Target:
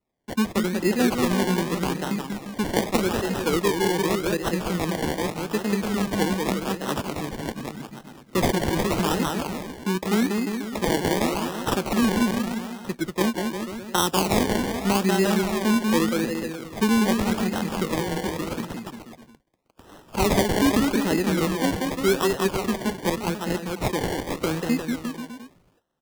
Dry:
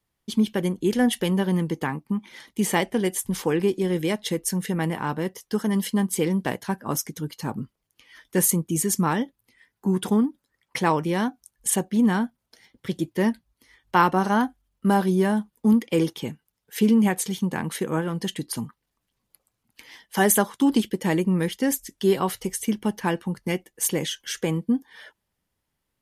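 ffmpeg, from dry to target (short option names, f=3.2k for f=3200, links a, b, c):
-filter_complex "[0:a]highpass=200,aecho=1:1:190|351.5|488.8|605.5|704.6:0.631|0.398|0.251|0.158|0.1,acrusher=samples=27:mix=1:aa=0.000001:lfo=1:lforange=16.2:lforate=0.84,acrossover=split=490|3000[a][b][c];[b]acompressor=threshold=-23dB:ratio=6[d];[a][d][c]amix=inputs=3:normalize=0"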